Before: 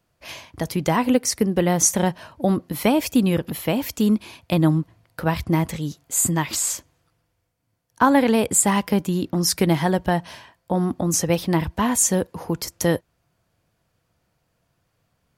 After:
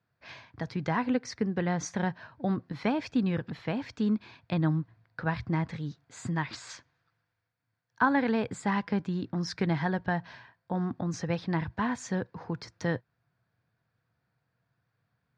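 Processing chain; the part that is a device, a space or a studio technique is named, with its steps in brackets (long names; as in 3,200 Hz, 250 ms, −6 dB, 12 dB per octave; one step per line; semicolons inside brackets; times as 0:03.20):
0:06.69–0:08.02: tilt shelving filter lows −4 dB, about 680 Hz
guitar cabinet (loudspeaker in its box 88–4,500 Hz, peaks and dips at 120 Hz +8 dB, 340 Hz −4 dB, 570 Hz −5 dB, 1,600 Hz +7 dB, 3,000 Hz −7 dB)
level −8.5 dB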